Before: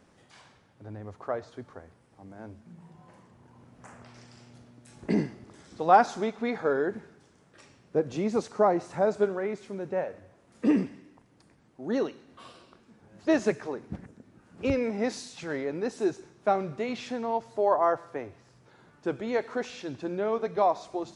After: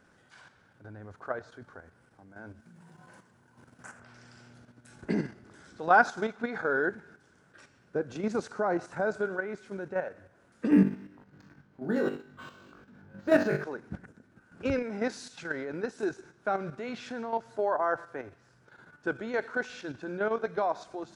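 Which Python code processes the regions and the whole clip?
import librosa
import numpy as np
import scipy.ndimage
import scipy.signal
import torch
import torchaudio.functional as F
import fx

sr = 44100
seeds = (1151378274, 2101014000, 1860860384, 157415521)

y = fx.chain(x, sr, fx.highpass(hz=88.0, slope=12),
    fx.high_shelf(hz=4100.0, db=9.5), at=(2.6, 4.0))
y = fx.chain(y, sr, fx.peak_eq(hz=150.0, db=7.5, octaves=1.5),
    fx.room_flutter(wall_m=3.5, rt60_s=0.37),
    fx.resample_linear(factor=4), at=(10.71, 13.64))
y = fx.peak_eq(y, sr, hz=1500.0, db=14.0, octaves=0.25)
y = fx.level_steps(y, sr, step_db=9)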